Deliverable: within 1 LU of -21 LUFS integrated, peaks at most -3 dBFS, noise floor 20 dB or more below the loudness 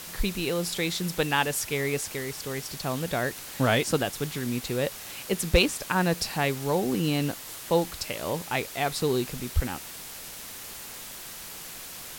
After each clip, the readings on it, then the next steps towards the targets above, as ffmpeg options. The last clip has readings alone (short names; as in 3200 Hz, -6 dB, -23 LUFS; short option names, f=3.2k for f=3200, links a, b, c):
noise floor -41 dBFS; noise floor target -49 dBFS; loudness -28.5 LUFS; peak -9.5 dBFS; loudness target -21.0 LUFS
-> -af "afftdn=nr=8:nf=-41"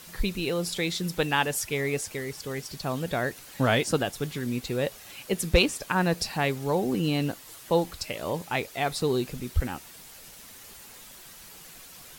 noise floor -48 dBFS; loudness -28.0 LUFS; peak -9.0 dBFS; loudness target -21.0 LUFS
-> -af "volume=7dB,alimiter=limit=-3dB:level=0:latency=1"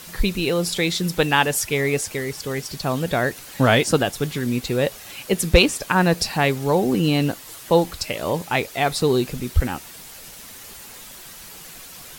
loudness -21.0 LUFS; peak -3.0 dBFS; noise floor -41 dBFS